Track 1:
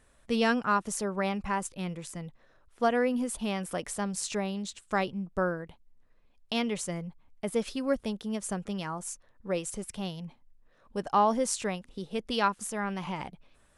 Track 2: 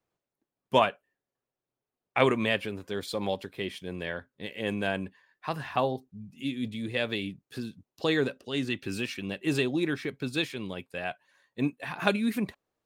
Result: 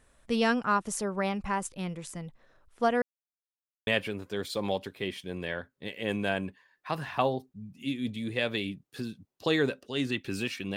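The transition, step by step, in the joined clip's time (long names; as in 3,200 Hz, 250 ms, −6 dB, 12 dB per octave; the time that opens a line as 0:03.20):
track 1
0:03.02–0:03.87: silence
0:03.87: continue with track 2 from 0:02.45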